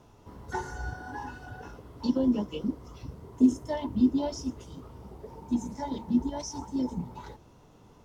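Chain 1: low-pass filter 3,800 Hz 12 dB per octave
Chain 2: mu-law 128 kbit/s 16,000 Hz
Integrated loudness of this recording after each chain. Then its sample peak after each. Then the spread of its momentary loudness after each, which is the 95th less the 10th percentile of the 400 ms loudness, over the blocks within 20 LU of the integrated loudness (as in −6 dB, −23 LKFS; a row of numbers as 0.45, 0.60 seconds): −30.5, −30.5 LKFS; −11.0, −11.0 dBFS; 21, 21 LU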